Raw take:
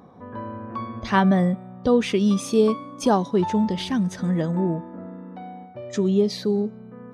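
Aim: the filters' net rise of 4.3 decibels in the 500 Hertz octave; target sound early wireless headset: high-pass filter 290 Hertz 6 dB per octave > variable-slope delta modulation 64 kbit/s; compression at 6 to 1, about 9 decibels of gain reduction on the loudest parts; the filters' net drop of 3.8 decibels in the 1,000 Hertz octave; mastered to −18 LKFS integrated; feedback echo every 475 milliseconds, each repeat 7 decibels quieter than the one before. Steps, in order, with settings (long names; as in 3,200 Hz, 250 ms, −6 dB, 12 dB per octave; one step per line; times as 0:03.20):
parametric band 500 Hz +8.5 dB
parametric band 1,000 Hz −7.5 dB
downward compressor 6 to 1, threshold −18 dBFS
high-pass filter 290 Hz 6 dB per octave
repeating echo 475 ms, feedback 45%, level −7 dB
variable-slope delta modulation 64 kbit/s
level +9 dB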